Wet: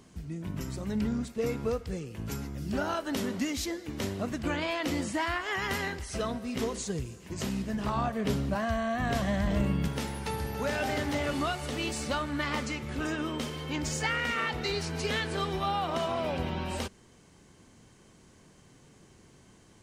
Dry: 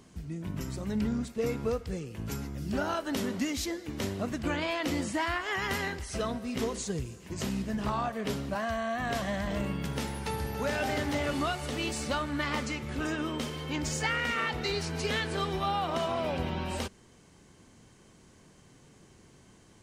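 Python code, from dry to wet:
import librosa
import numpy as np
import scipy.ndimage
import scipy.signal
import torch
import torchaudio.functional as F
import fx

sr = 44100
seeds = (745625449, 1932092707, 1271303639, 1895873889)

y = fx.low_shelf(x, sr, hz=250.0, db=8.0, at=(7.96, 9.88))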